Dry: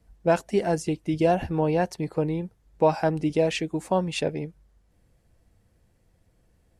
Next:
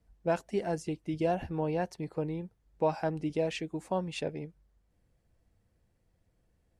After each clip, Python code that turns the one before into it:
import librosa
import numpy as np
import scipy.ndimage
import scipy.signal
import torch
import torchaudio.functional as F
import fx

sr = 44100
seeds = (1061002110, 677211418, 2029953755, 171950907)

y = fx.high_shelf(x, sr, hz=7800.0, db=-4.5)
y = y * librosa.db_to_amplitude(-8.0)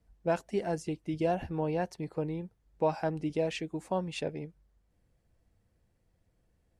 y = x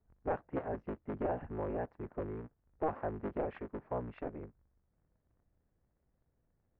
y = fx.cycle_switch(x, sr, every=3, mode='inverted')
y = scipy.signal.sosfilt(scipy.signal.butter(4, 1800.0, 'lowpass', fs=sr, output='sos'), y)
y = y * librosa.db_to_amplitude(-6.0)